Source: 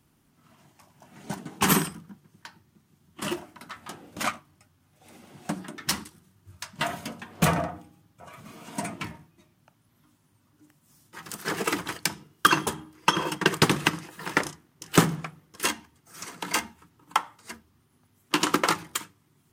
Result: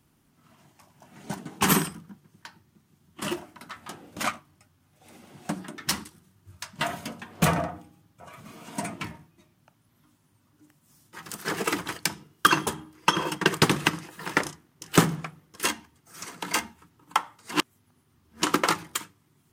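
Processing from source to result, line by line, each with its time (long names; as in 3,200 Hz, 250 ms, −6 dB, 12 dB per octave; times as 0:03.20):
0:17.52–0:18.42: reverse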